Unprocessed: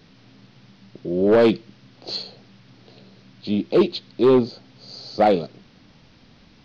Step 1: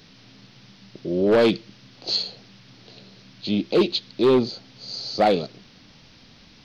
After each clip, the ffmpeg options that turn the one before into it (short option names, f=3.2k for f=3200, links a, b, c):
-filter_complex "[0:a]highshelf=f=2.6k:g=9.5,asplit=2[a][b];[b]alimiter=limit=-13.5dB:level=0:latency=1,volume=-2.5dB[c];[a][c]amix=inputs=2:normalize=0,volume=-5.5dB"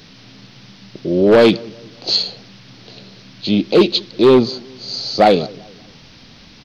-filter_complex "[0:a]asplit=2[a][b];[b]adelay=194,lowpass=f=1k:p=1,volume=-23dB,asplit=2[c][d];[d]adelay=194,lowpass=f=1k:p=1,volume=0.45,asplit=2[e][f];[f]adelay=194,lowpass=f=1k:p=1,volume=0.45[g];[a][c][e][g]amix=inputs=4:normalize=0,volume=7.5dB"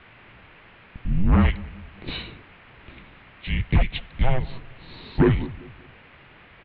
-af "highpass=f=330:t=q:w=0.5412,highpass=f=330:t=q:w=1.307,lowpass=f=2.9k:t=q:w=0.5176,lowpass=f=2.9k:t=q:w=0.7071,lowpass=f=2.9k:t=q:w=1.932,afreqshift=-380,acompressor=threshold=-16dB:ratio=2.5"